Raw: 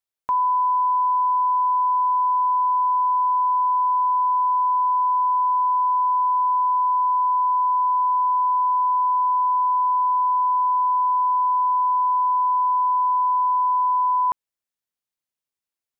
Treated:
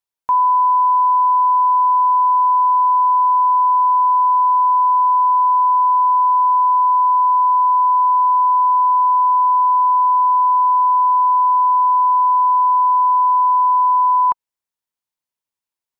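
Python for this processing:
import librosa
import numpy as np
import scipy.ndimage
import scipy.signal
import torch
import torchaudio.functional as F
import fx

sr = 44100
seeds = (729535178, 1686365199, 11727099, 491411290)

y = fx.peak_eq(x, sr, hz=950.0, db=8.0, octaves=0.27)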